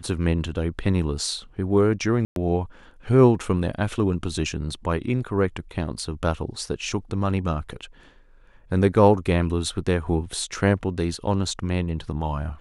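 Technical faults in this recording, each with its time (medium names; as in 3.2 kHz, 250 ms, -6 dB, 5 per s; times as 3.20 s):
2.25–2.36 s: dropout 112 ms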